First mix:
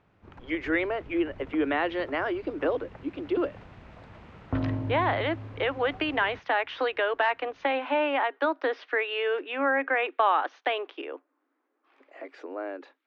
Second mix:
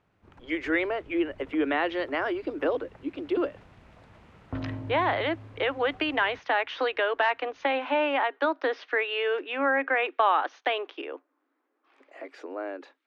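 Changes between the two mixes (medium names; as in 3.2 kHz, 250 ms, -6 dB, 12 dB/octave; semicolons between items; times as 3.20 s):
background -5.5 dB; master: remove distance through air 84 m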